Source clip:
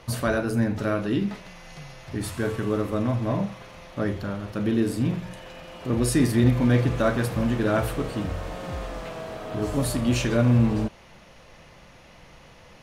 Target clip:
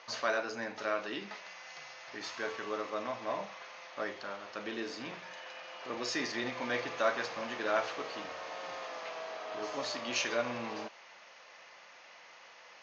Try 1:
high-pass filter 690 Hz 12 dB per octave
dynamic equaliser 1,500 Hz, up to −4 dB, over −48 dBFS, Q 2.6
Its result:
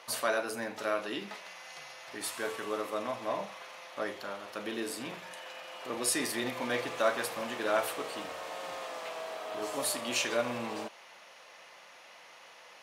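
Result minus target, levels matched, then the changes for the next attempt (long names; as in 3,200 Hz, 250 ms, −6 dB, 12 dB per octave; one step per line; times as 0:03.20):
8,000 Hz band +6.5 dB
add after dynamic equaliser: Chebyshev low-pass with heavy ripple 6,600 Hz, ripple 3 dB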